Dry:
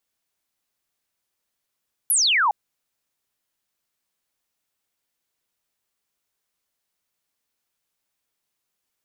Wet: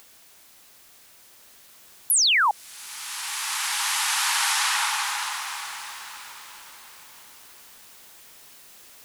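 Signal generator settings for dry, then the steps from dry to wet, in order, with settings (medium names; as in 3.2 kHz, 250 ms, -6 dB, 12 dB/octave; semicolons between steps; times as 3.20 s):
laser zap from 12 kHz, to 780 Hz, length 0.41 s sine, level -16 dB
bass shelf 250 Hz -3.5 dB; upward compressor, threshold -30 dBFS; swelling reverb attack 2390 ms, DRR -1 dB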